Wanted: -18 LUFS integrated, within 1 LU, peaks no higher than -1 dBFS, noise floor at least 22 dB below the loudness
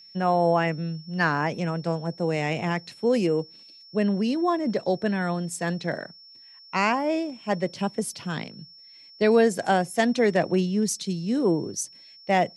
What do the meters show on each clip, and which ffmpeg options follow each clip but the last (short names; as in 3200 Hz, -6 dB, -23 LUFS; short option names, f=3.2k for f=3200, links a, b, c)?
steady tone 5400 Hz; tone level -47 dBFS; loudness -25.5 LUFS; peak -7.5 dBFS; loudness target -18.0 LUFS
-> -af "bandreject=f=5.4k:w=30"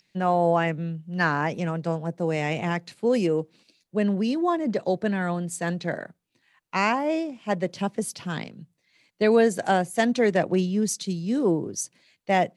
steady tone none; loudness -25.5 LUFS; peak -7.5 dBFS; loudness target -18.0 LUFS
-> -af "volume=7.5dB,alimiter=limit=-1dB:level=0:latency=1"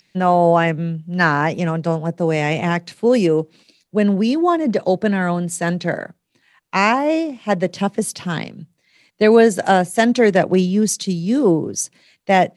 loudness -18.0 LUFS; peak -1.0 dBFS; noise floor -66 dBFS